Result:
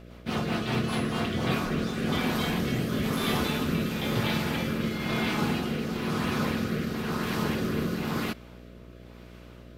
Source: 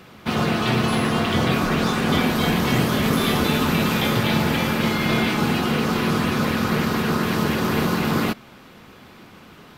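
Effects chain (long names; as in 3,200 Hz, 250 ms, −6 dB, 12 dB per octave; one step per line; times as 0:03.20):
rotating-speaker cabinet horn 5 Hz, later 1 Hz, at 0:00.85
hum with harmonics 60 Hz, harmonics 11, −42 dBFS −4 dB per octave
level −6 dB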